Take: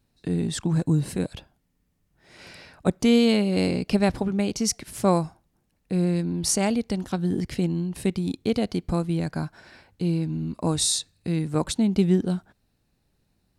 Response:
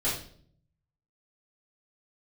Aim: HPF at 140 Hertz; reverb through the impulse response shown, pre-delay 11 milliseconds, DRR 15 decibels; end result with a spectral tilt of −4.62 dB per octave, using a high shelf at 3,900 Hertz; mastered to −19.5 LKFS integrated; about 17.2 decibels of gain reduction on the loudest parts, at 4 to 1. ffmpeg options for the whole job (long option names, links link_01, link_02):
-filter_complex "[0:a]highpass=140,highshelf=frequency=3900:gain=4,acompressor=threshold=-37dB:ratio=4,asplit=2[link_01][link_02];[1:a]atrim=start_sample=2205,adelay=11[link_03];[link_02][link_03]afir=irnorm=-1:irlink=0,volume=-23.5dB[link_04];[link_01][link_04]amix=inputs=2:normalize=0,volume=19dB"